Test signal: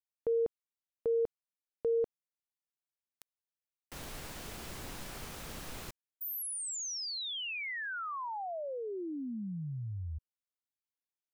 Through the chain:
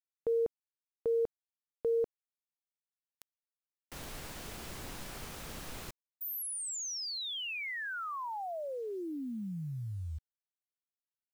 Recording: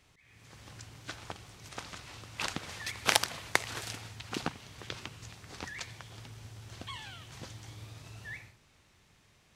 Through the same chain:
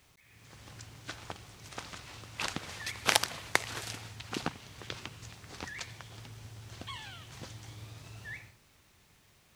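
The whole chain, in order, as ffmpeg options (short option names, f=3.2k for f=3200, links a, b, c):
-af "acrusher=bits=10:mix=0:aa=0.000001"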